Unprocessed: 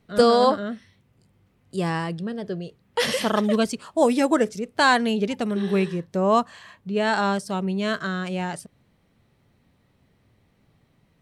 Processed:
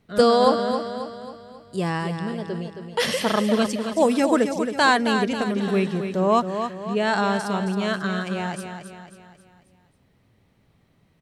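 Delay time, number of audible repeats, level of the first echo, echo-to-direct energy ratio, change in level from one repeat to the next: 270 ms, 5, −8.0 dB, −7.0 dB, −6.5 dB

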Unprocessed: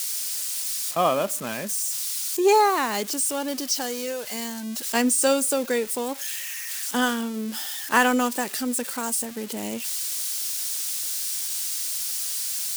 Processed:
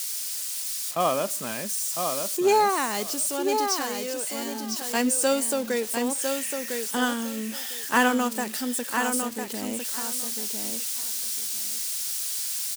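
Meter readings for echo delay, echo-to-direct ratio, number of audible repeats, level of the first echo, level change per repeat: 1,003 ms, −5.5 dB, 2, −5.5 dB, −15.5 dB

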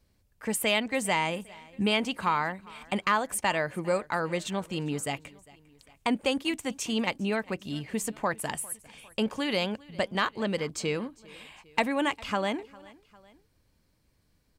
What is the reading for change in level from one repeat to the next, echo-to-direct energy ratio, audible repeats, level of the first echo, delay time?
−5.0 dB, −22.0 dB, 2, −23.0 dB, 402 ms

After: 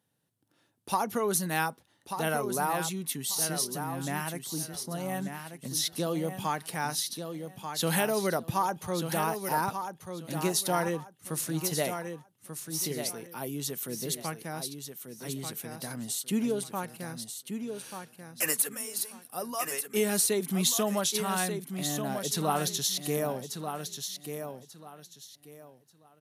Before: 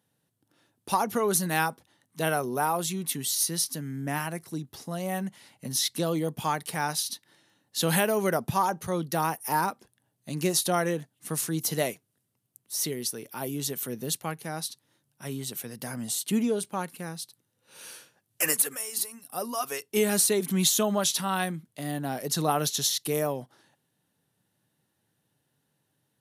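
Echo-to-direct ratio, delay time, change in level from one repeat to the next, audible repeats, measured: −7.0 dB, 1,188 ms, −12.5 dB, 3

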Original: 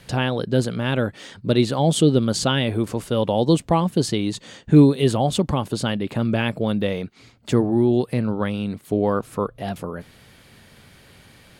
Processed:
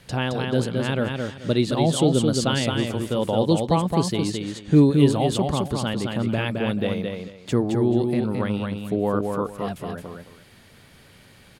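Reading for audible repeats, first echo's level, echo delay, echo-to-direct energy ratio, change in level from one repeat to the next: 2, −4.0 dB, 217 ms, −4.0 dB, −13.0 dB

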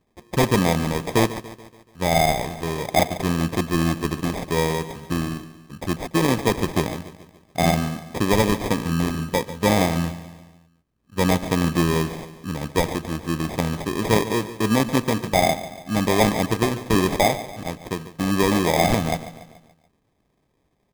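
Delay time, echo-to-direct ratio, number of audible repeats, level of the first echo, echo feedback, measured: 143 ms, −13.5 dB, 4, −14.5 dB, 50%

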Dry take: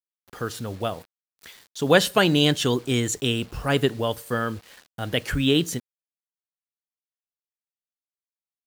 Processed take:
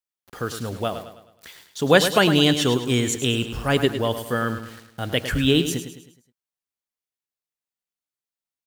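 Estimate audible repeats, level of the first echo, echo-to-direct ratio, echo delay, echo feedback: 4, −10.0 dB, −9.0 dB, 105 ms, 44%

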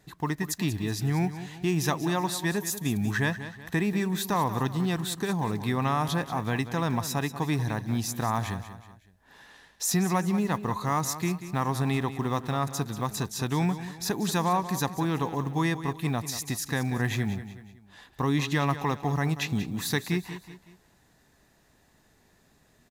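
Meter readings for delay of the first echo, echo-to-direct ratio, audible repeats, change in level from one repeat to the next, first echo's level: 187 ms, −11.5 dB, 3, −7.5 dB, −12.5 dB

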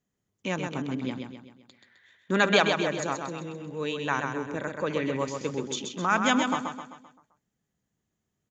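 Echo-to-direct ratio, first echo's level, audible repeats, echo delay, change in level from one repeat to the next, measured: −4.5 dB, −5.5 dB, 5, 130 ms, −6.5 dB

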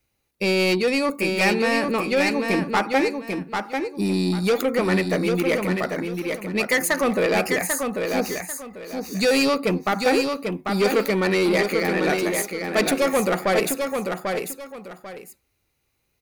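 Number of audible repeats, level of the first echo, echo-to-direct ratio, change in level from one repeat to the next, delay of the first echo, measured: 2, −5.0 dB, −4.5 dB, −11.5 dB, 793 ms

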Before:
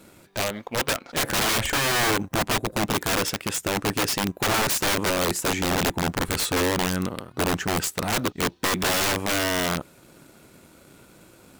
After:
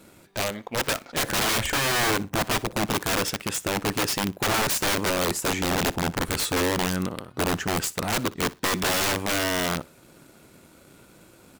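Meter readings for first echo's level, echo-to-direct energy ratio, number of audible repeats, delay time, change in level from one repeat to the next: −21.0 dB, −21.0 dB, 2, 60 ms, −13.5 dB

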